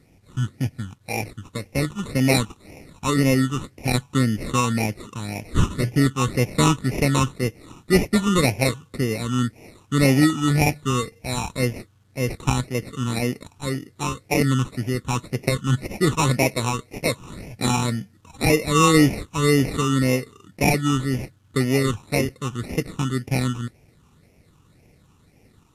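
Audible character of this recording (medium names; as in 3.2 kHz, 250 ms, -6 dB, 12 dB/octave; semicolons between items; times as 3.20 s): aliases and images of a low sample rate 1.6 kHz, jitter 0%; phasing stages 8, 1.9 Hz, lowest notch 600–1200 Hz; a quantiser's noise floor 12-bit, dither none; Vorbis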